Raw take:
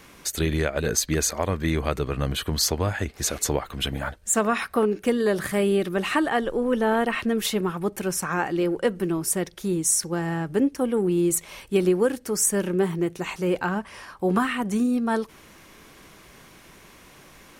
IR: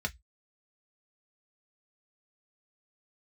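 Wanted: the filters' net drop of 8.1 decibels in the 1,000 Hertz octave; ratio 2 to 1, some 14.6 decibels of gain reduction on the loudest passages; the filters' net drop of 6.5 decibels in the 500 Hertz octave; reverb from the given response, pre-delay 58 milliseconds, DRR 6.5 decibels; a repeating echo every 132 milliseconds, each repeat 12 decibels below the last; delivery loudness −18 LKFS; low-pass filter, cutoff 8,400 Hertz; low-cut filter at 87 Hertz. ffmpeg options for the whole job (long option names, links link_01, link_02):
-filter_complex "[0:a]highpass=87,lowpass=8400,equalizer=frequency=500:width_type=o:gain=-7,equalizer=frequency=1000:width_type=o:gain=-8.5,acompressor=threshold=-48dB:ratio=2,aecho=1:1:132|264|396:0.251|0.0628|0.0157,asplit=2[link_01][link_02];[1:a]atrim=start_sample=2205,adelay=58[link_03];[link_02][link_03]afir=irnorm=-1:irlink=0,volume=-10.5dB[link_04];[link_01][link_04]amix=inputs=2:normalize=0,volume=21dB"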